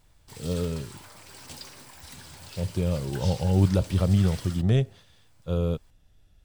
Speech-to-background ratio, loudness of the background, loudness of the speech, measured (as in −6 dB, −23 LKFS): 16.5 dB, −43.0 LKFS, −26.5 LKFS